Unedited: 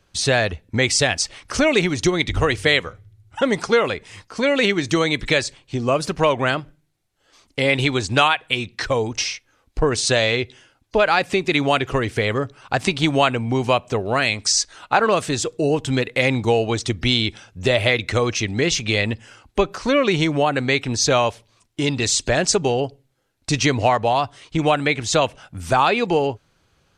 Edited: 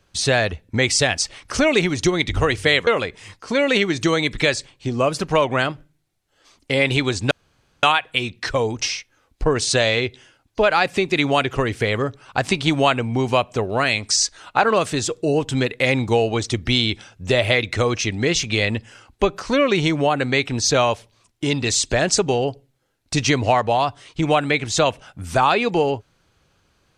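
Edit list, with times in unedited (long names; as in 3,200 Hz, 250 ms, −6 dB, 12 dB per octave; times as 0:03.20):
0:02.87–0:03.75: remove
0:08.19: splice in room tone 0.52 s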